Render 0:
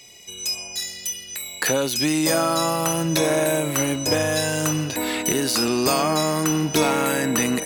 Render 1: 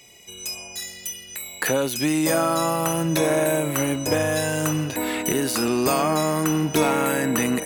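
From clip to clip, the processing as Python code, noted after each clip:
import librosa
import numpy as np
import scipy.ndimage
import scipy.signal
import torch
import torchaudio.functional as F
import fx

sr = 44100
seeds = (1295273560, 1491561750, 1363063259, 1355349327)

y = fx.peak_eq(x, sr, hz=4800.0, db=-7.0, octaves=1.1)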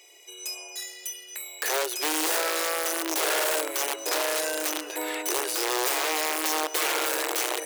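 y = (np.mod(10.0 ** (16.0 / 20.0) * x + 1.0, 2.0) - 1.0) / 10.0 ** (16.0 / 20.0)
y = fx.brickwall_highpass(y, sr, low_hz=310.0)
y = y + 10.0 ** (-24.0 / 20.0) * np.pad(y, (int(228 * sr / 1000.0), 0))[:len(y)]
y = F.gain(torch.from_numpy(y), -3.5).numpy()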